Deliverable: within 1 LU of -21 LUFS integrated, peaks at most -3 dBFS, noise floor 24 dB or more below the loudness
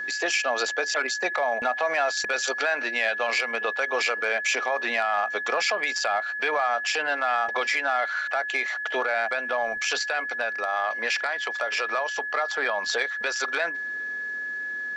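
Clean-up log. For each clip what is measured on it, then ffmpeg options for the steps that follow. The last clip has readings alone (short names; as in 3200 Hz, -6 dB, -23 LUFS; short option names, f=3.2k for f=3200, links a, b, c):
steady tone 1700 Hz; tone level -29 dBFS; loudness -25.5 LUFS; peak -11.5 dBFS; loudness target -21.0 LUFS
-> -af "bandreject=f=1.7k:w=30"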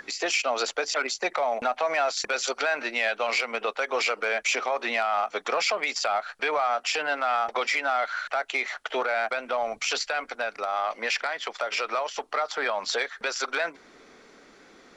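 steady tone none; loudness -27.0 LUFS; peak -12.5 dBFS; loudness target -21.0 LUFS
-> -af "volume=6dB"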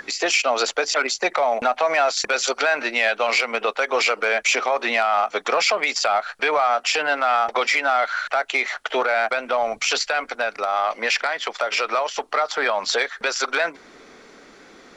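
loudness -21.0 LUFS; peak -6.5 dBFS; noise floor -48 dBFS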